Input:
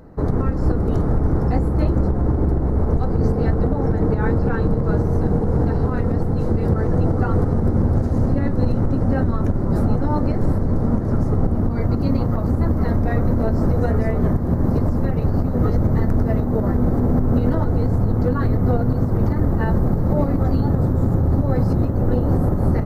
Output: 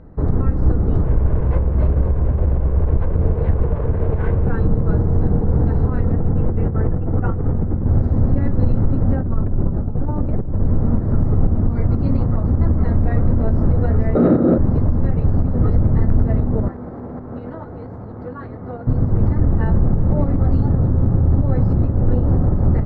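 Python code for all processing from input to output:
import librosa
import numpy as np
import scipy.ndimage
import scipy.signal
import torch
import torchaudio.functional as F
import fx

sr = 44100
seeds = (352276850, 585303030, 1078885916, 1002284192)

y = fx.chain(x, sr, fx.lower_of_two(delay_ms=1.9),
    fx.air_absorb(metres=210.0), at=(1.04, 4.47))
y = fx.chain(y, sr, fx.steep_lowpass(hz=3400.0, slope=72),
    fx.over_compress(threshold_db=-19.0, ratio=-0.5), at=(6.12, 7.86))
y = fx.chain(y, sr, fx.lowpass(hz=1300.0, slope=6),
    fx.over_compress(threshold_db=-20.0, ratio=-0.5), at=(9.15, 10.62))
y = fx.chain(y, sr, fx.highpass(hz=160.0, slope=12),
    fx.clip_hard(threshold_db=-19.5),
    fx.small_body(hz=(320.0, 510.0, 1300.0, 3800.0), ring_ms=20, db=17), at=(14.15, 14.58))
y = fx.chain(y, sr, fx.highpass(hz=820.0, slope=6),
    fx.high_shelf(hz=2100.0, db=-7.5), at=(16.68, 18.87))
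y = scipy.signal.sosfilt(scipy.signal.butter(2, 3000.0, 'lowpass', fs=sr, output='sos'), y)
y = fx.low_shelf(y, sr, hz=150.0, db=9.0)
y = y * 10.0 ** (-3.5 / 20.0)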